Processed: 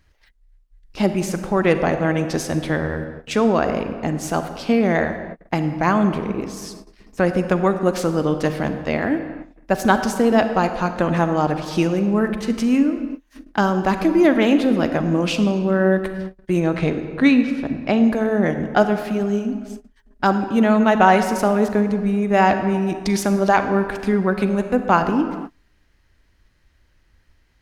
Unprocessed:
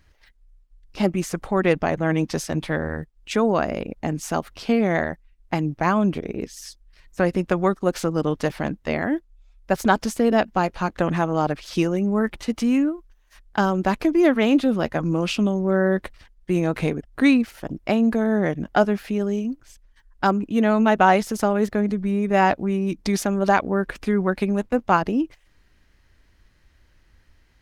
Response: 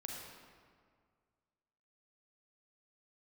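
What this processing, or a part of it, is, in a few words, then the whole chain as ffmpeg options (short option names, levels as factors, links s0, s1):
keyed gated reverb: -filter_complex "[0:a]asettb=1/sr,asplit=3[s0][s1][s2];[s0]atrim=end=16.604[s3];[s1]atrim=start=16.6:end=18.01,asetpts=PTS-STARTPTS,afade=t=in:d=0.004:c=qsin,afade=t=out:st=1.406:d=0.004:c=qsin,lowpass=5700[s4];[s2]atrim=start=18.006[s5];[s3][s4]acrossfade=d=0.004:c1=hsin:c2=qsin[s6];[s6][s5]acrossfade=d=0.004:c1=qsin:c2=hsin,asplit=3[s7][s8][s9];[1:a]atrim=start_sample=2205[s10];[s8][s10]afir=irnorm=-1:irlink=0[s11];[s9]apad=whole_len=1217630[s12];[s11][s12]sidechaingate=range=0.0141:threshold=0.00355:ratio=16:detection=peak,volume=0.944[s13];[s7][s13]amix=inputs=2:normalize=0,volume=0.841"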